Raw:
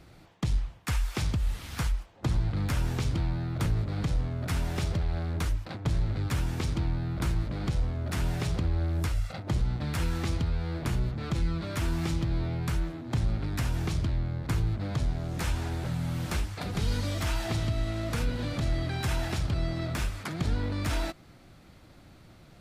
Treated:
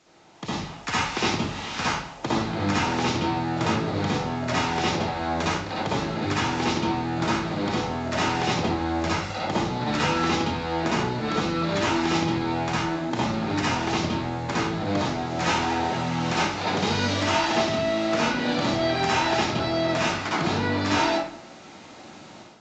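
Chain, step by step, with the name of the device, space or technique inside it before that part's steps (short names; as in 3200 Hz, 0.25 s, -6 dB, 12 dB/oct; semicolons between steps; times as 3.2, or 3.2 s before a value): filmed off a television (BPF 280–7700 Hz; bell 870 Hz +4 dB 0.27 oct; reverb RT60 0.60 s, pre-delay 54 ms, DRR -7.5 dB; white noise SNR 25 dB; AGC gain up to 11.5 dB; gain -6 dB; AAC 64 kbps 16000 Hz)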